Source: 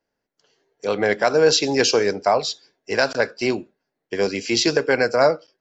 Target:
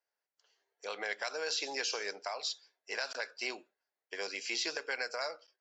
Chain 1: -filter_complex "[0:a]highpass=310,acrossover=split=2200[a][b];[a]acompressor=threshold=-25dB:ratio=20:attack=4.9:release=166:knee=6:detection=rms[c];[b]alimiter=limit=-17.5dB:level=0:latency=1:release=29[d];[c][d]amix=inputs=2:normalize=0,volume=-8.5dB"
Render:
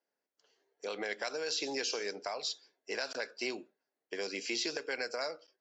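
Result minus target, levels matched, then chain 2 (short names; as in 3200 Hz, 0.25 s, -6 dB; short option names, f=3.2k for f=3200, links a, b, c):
250 Hz band +7.5 dB
-filter_complex "[0:a]highpass=750,acrossover=split=2200[a][b];[a]acompressor=threshold=-25dB:ratio=20:attack=4.9:release=166:knee=6:detection=rms[c];[b]alimiter=limit=-17.5dB:level=0:latency=1:release=29[d];[c][d]amix=inputs=2:normalize=0,volume=-8.5dB"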